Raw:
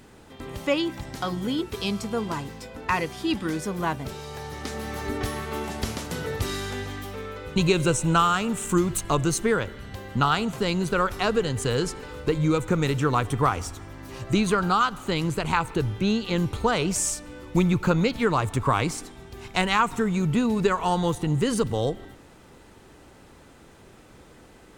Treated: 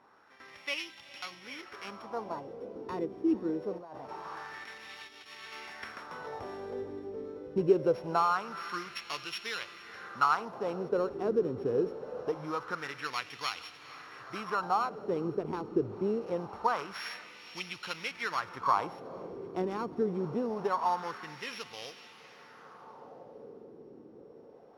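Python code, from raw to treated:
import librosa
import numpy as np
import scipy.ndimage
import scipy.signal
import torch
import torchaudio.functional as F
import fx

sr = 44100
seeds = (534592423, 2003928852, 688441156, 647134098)

y = np.r_[np.sort(x[:len(x) // 8 * 8].reshape(-1, 8), axis=1).ravel(), x[len(x) // 8 * 8:]]
y = fx.echo_diffused(y, sr, ms=465, feedback_pct=71, wet_db=-15.0)
y = fx.over_compress(y, sr, threshold_db=-34.0, ratio=-1.0, at=(3.78, 5.53))
y = fx.wah_lfo(y, sr, hz=0.24, low_hz=350.0, high_hz=2700.0, q=2.3)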